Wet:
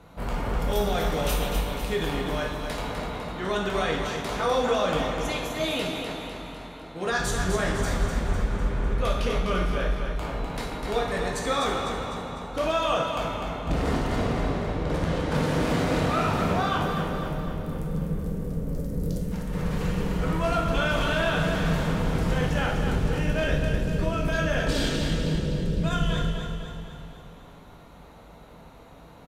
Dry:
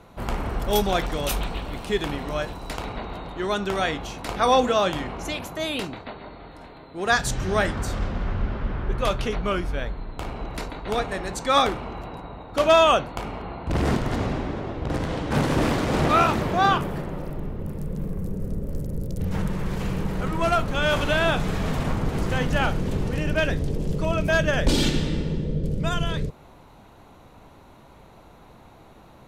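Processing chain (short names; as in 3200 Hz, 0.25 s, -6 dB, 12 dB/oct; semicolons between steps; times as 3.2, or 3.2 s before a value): 19.01–19.53 negative-ratio compressor -28 dBFS, ratio -0.5; limiter -17 dBFS, peak gain reduction 8.5 dB; feedback echo 0.251 s, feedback 54%, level -6.5 dB; reverb, pre-delay 3 ms, DRR -1 dB; gain -3.5 dB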